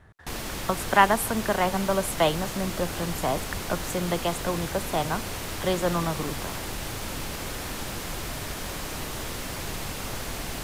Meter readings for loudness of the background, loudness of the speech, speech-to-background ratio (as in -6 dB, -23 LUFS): -33.0 LUFS, -27.0 LUFS, 6.0 dB